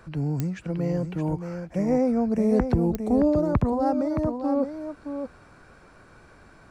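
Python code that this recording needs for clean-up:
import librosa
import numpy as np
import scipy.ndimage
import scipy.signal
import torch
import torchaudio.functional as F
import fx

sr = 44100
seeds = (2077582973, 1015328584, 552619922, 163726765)

y = fx.fix_declick_ar(x, sr, threshold=10.0)
y = fx.fix_echo_inverse(y, sr, delay_ms=620, level_db=-7.5)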